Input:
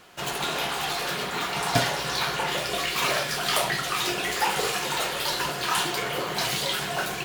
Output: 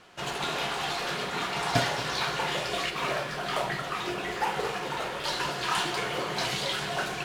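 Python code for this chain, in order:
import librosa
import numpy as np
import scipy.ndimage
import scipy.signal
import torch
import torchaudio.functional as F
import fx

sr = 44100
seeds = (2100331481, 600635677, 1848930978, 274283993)

y = fx.peak_eq(x, sr, hz=8000.0, db=-10.0, octaves=2.8, at=(2.9, 5.24))
y = fx.mod_noise(y, sr, seeds[0], snr_db=13)
y = fx.air_absorb(y, sr, metres=54.0)
y = y + 10.0 ** (-13.5 / 20.0) * np.pad(y, (int(228 * sr / 1000.0), 0))[:len(y)]
y = y * librosa.db_to_amplitude(-2.0)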